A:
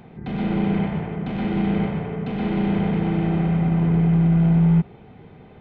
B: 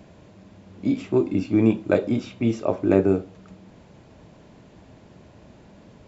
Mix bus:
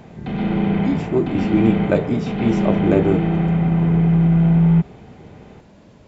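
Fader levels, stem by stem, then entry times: +2.5, +1.5 decibels; 0.00, 0.00 seconds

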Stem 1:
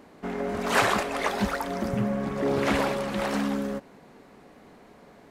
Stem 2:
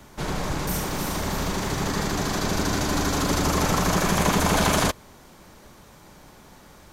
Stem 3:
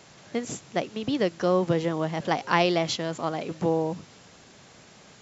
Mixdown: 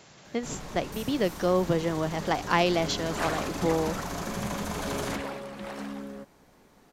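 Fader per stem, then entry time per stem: −10.0, −13.0, −1.5 decibels; 2.45, 0.25, 0.00 seconds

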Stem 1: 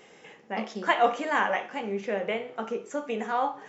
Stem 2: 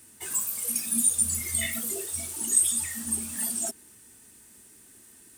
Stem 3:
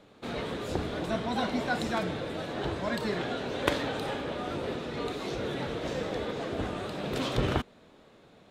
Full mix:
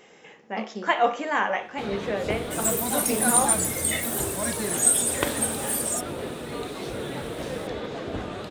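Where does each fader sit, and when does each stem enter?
+1.0, +2.0, +1.0 decibels; 0.00, 2.30, 1.55 seconds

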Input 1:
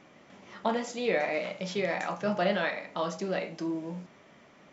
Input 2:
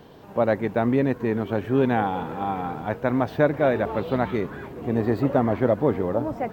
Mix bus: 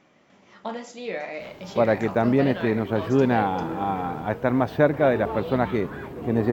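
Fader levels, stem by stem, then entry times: −3.5, +1.0 decibels; 0.00, 1.40 seconds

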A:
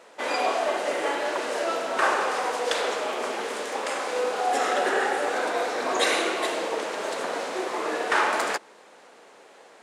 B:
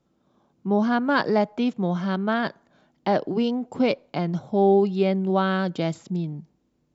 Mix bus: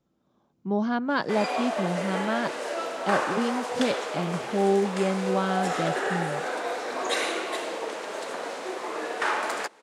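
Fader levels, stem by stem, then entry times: −4.0, −4.5 decibels; 1.10, 0.00 seconds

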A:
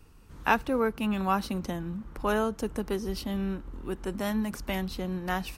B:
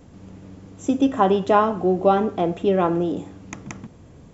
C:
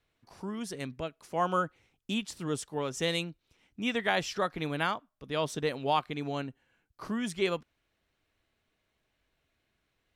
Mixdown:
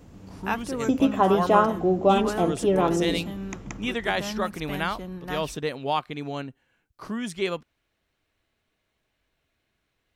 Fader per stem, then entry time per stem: −4.0, −2.5, +2.0 decibels; 0.00, 0.00, 0.00 seconds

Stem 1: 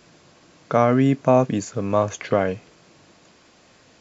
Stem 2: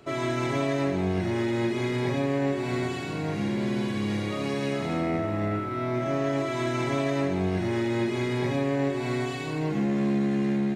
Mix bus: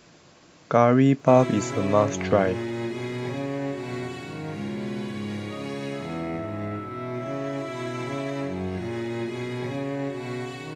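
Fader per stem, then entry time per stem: −0.5, −3.5 decibels; 0.00, 1.20 seconds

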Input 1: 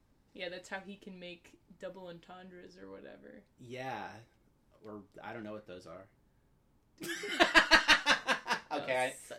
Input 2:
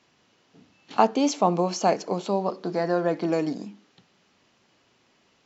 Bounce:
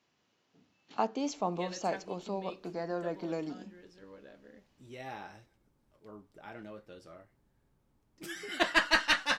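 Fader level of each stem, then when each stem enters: −2.5, −11.5 decibels; 1.20, 0.00 seconds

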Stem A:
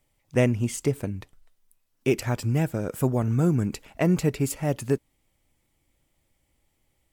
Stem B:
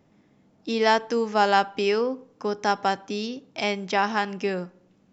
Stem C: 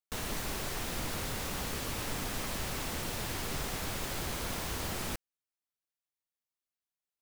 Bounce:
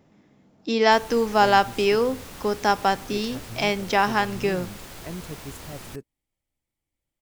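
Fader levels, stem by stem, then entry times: −14.5, +2.5, −4.5 decibels; 1.05, 0.00, 0.80 seconds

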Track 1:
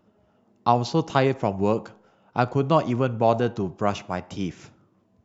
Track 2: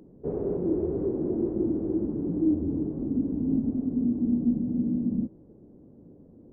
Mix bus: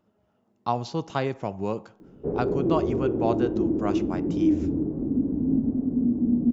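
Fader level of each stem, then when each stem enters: −6.5, +2.5 decibels; 0.00, 2.00 seconds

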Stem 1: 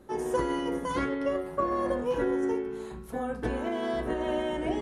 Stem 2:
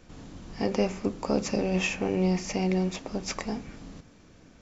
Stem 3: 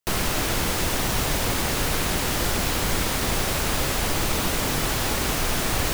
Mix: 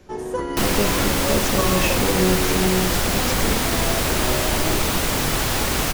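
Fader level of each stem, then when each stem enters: +2.0, +3.0, +3.0 decibels; 0.00, 0.00, 0.50 seconds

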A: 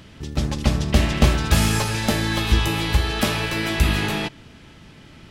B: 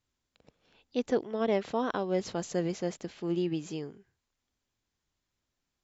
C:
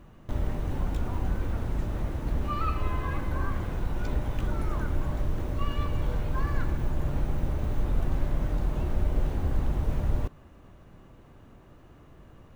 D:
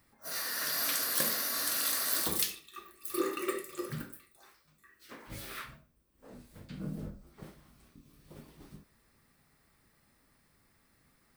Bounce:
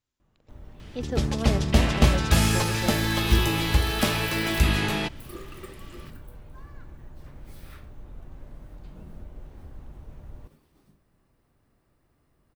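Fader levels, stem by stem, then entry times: −2.5, −3.5, −16.5, −10.0 decibels; 0.80, 0.00, 0.20, 2.15 seconds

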